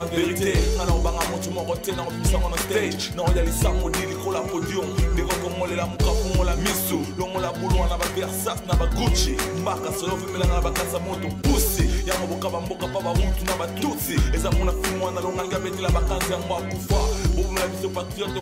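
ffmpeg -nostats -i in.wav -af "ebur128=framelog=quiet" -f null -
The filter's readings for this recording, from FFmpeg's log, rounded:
Integrated loudness:
  I:         -24.2 LUFS
  Threshold: -34.2 LUFS
Loudness range:
  LRA:         0.9 LU
  Threshold: -44.2 LUFS
  LRA low:   -24.6 LUFS
  LRA high:  -23.7 LUFS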